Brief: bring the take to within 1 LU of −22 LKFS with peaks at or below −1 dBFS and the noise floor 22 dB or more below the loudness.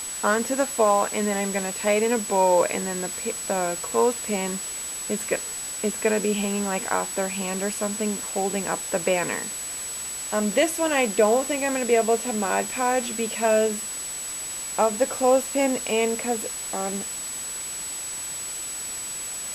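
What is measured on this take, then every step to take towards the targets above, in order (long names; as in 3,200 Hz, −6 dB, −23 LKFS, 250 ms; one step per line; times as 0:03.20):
interfering tone 7,900 Hz; level of the tone −31 dBFS; background noise floor −33 dBFS; target noise floor −47 dBFS; integrated loudness −24.5 LKFS; sample peak −7.5 dBFS; target loudness −22.0 LKFS
→ notch filter 7,900 Hz, Q 30
noise reduction from a noise print 14 dB
level +2.5 dB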